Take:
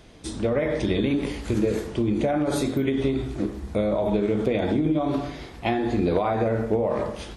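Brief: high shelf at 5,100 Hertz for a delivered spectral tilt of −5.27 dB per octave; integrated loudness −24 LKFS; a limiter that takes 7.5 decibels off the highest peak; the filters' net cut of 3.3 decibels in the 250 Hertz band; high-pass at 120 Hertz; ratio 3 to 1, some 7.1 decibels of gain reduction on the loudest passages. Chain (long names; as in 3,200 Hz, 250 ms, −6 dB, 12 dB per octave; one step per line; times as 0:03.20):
high-pass filter 120 Hz
parametric band 250 Hz −4 dB
high-shelf EQ 5,100 Hz +5.5 dB
downward compressor 3 to 1, threshold −30 dBFS
level +10 dB
brickwall limiter −13.5 dBFS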